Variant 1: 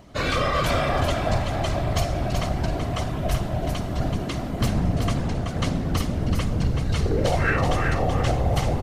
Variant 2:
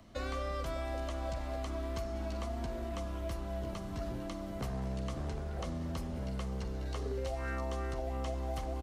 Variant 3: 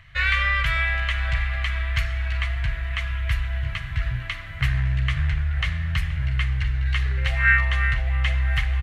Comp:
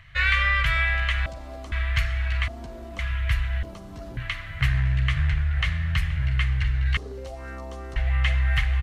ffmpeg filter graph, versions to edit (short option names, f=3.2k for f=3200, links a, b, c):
-filter_complex "[1:a]asplit=4[a][b][c][d];[2:a]asplit=5[e][f][g][h][i];[e]atrim=end=1.262[j];[a]atrim=start=1.258:end=1.722[k];[f]atrim=start=1.718:end=2.482[l];[b]atrim=start=2.478:end=2.992[m];[g]atrim=start=2.988:end=3.632[n];[c]atrim=start=3.628:end=4.172[o];[h]atrim=start=4.168:end=6.972[p];[d]atrim=start=6.968:end=7.962[q];[i]atrim=start=7.958[r];[j][k]acrossfade=d=0.004:c1=hsin:c2=hsin[s];[s][l]acrossfade=d=0.004:c1=hsin:c2=hsin[t];[t][m]acrossfade=d=0.004:c1=hsin:c2=hsin[u];[u][n]acrossfade=d=0.004:c1=hsin:c2=hsin[v];[v][o]acrossfade=d=0.004:c1=hsin:c2=hsin[w];[w][p]acrossfade=d=0.004:c1=hsin:c2=hsin[x];[x][q]acrossfade=d=0.004:c1=hsin:c2=hsin[y];[y][r]acrossfade=d=0.004:c1=hsin:c2=hsin"